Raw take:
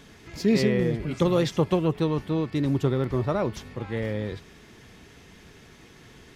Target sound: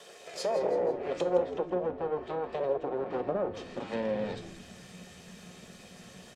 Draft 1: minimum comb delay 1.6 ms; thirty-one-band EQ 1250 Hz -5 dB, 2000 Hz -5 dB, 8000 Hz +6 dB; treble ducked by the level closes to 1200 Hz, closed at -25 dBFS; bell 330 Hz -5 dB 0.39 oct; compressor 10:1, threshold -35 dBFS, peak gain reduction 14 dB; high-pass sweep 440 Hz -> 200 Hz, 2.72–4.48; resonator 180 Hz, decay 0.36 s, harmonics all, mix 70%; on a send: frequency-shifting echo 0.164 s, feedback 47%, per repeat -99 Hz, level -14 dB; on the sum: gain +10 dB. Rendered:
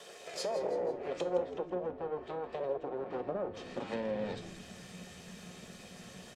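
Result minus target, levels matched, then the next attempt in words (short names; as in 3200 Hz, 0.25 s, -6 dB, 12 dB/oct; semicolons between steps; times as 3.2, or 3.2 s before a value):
compressor: peak gain reduction +5.5 dB
minimum comb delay 1.6 ms; thirty-one-band EQ 1250 Hz -5 dB, 2000 Hz -5 dB, 8000 Hz +6 dB; treble ducked by the level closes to 1200 Hz, closed at -25 dBFS; bell 330 Hz -5 dB 0.39 oct; compressor 10:1, threshold -29 dBFS, peak gain reduction 8.5 dB; high-pass sweep 440 Hz -> 200 Hz, 2.72–4.48; resonator 180 Hz, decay 0.36 s, harmonics all, mix 70%; on a send: frequency-shifting echo 0.164 s, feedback 47%, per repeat -99 Hz, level -14 dB; on the sum: gain +10 dB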